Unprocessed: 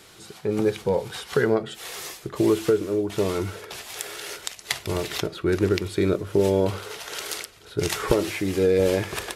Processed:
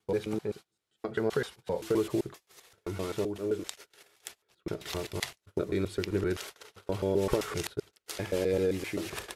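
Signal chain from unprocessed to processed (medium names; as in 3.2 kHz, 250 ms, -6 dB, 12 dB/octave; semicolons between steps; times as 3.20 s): slices played last to first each 130 ms, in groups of 7; gate -33 dBFS, range -29 dB; trim -8 dB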